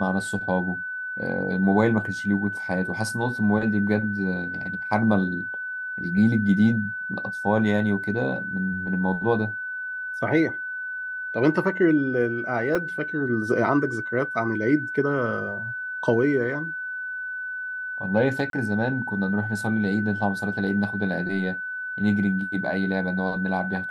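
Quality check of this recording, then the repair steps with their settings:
whistle 1,500 Hz −29 dBFS
0:12.75: drop-out 3.1 ms
0:18.50–0:18.53: drop-out 32 ms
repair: notch filter 1,500 Hz, Q 30
repair the gap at 0:12.75, 3.1 ms
repair the gap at 0:18.50, 32 ms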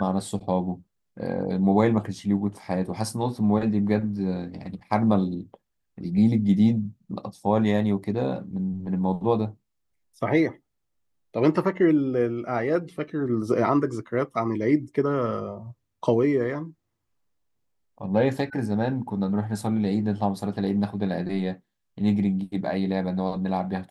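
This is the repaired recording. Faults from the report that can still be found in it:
none of them is left

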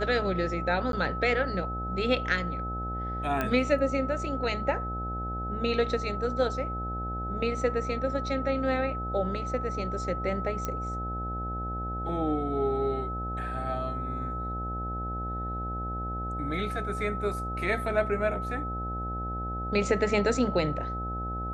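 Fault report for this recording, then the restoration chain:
mains buzz 60 Hz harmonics 14 −35 dBFS
whistle 1,300 Hz −34 dBFS
0:00.92–0:00.93: drop-out 12 ms
0:03.41: click −15 dBFS
0:10.65: click −17 dBFS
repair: click removal
hum removal 60 Hz, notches 14
notch filter 1,300 Hz, Q 30
repair the gap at 0:00.92, 12 ms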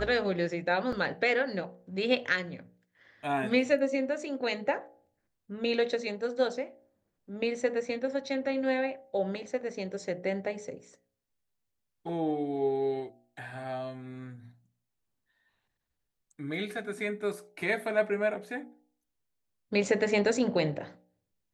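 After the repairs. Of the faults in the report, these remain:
none of them is left

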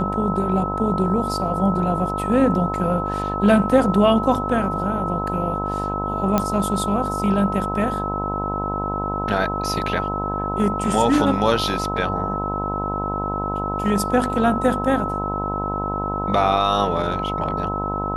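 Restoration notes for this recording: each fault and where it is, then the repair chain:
mains buzz 50 Hz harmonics 21 −27 dBFS
whistle 1,300 Hz −25 dBFS
0:06.38: click −5 dBFS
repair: click removal
hum removal 50 Hz, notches 21
notch filter 1,300 Hz, Q 30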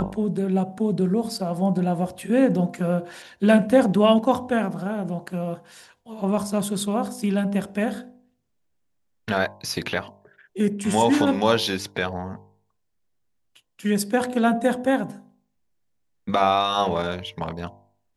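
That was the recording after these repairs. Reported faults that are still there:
none of them is left

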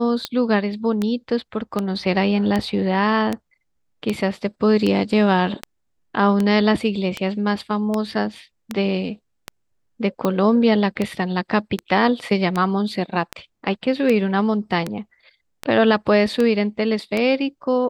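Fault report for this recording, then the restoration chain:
scratch tick 78 rpm −9 dBFS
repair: click removal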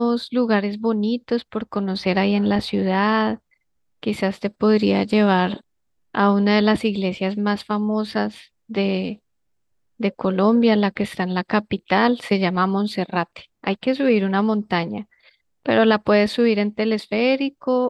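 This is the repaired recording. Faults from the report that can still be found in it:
none of them is left

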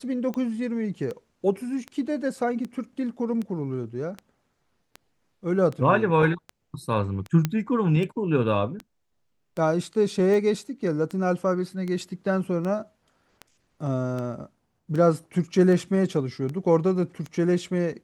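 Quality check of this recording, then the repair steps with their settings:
scratch tick 78 rpm −21 dBFS
0:07.45: click −10 dBFS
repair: click removal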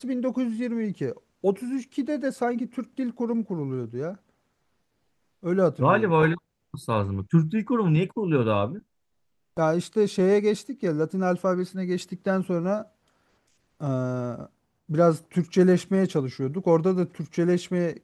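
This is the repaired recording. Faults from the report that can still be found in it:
none of them is left

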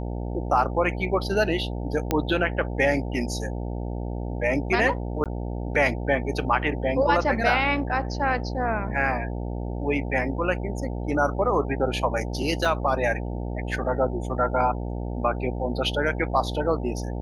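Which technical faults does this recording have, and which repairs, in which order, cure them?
mains buzz 60 Hz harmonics 15 −30 dBFS
0:02.11: click −8 dBFS
0:05.24–0:05.26: drop-out 17 ms
0:12.65: drop-out 3.9 ms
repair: click removal
hum removal 60 Hz, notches 15
repair the gap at 0:05.24, 17 ms
repair the gap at 0:12.65, 3.9 ms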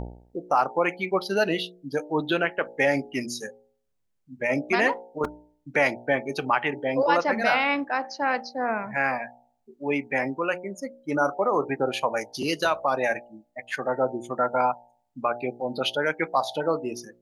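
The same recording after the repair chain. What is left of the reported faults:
none of them is left

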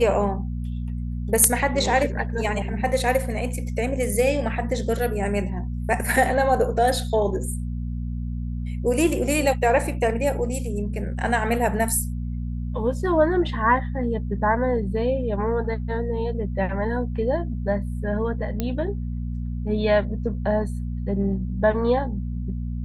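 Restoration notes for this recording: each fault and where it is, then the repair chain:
mains hum 60 Hz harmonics 4 −28 dBFS
0:18.60: click −11 dBFS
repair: click removal
hum removal 60 Hz, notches 4

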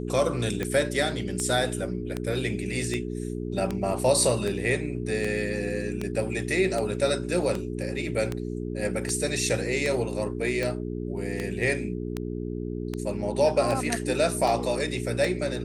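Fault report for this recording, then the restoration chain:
mains hum 60 Hz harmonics 7 −32 dBFS
scratch tick 78 rpm −15 dBFS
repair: click removal
hum removal 60 Hz, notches 7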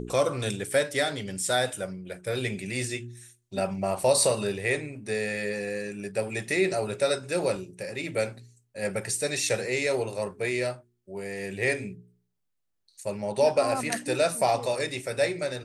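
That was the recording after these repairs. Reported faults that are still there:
none of them is left

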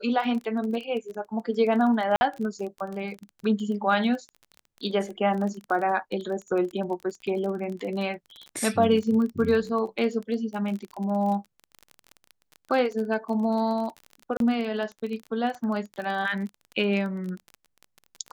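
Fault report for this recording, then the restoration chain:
surface crackle 27 per second −32 dBFS
0:02.16–0:02.21: drop-out 50 ms
0:14.37–0:14.40: drop-out 32 ms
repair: click removal
repair the gap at 0:02.16, 50 ms
repair the gap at 0:14.37, 32 ms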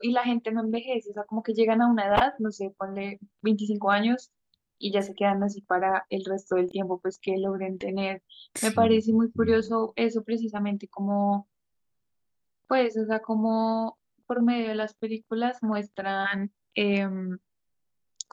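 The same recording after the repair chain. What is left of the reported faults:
none of them is left

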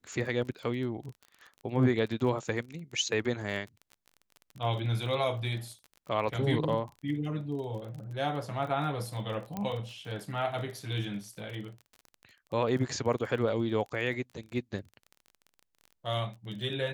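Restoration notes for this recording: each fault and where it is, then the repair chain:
surface crackle 25 per second −39 dBFS
0:09.57: click −21 dBFS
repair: click removal

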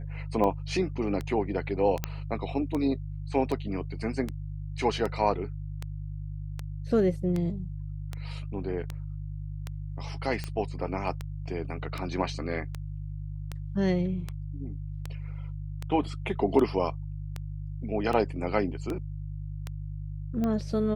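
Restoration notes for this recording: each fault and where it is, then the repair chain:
mains hum 50 Hz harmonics 3 −36 dBFS
scratch tick 78 rpm −19 dBFS
0:02.04: click −13 dBFS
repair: click removal
hum removal 50 Hz, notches 3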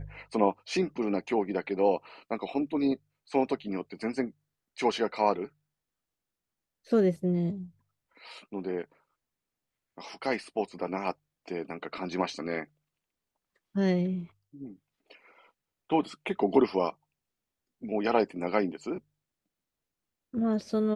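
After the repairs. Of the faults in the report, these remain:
none of them is left

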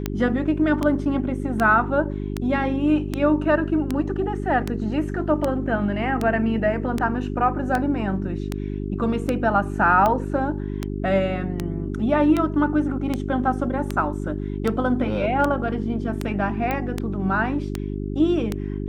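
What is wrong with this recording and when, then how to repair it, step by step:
mains hum 50 Hz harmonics 8 −28 dBFS
scratch tick 78 rpm −10 dBFS
0:16.71: click −12 dBFS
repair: click removal
hum removal 50 Hz, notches 8

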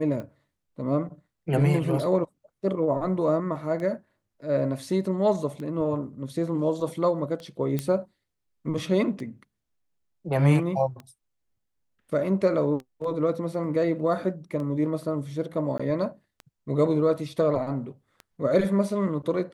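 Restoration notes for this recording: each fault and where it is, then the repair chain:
scratch tick 33 1/3 rpm −25 dBFS
0:07.79: click −14 dBFS
0:15.78–0:15.79: drop-out 15 ms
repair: click removal
repair the gap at 0:15.78, 15 ms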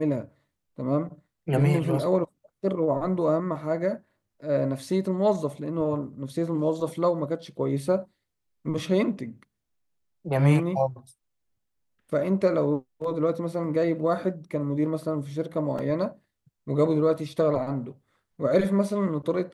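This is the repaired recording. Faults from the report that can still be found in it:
none of them is left

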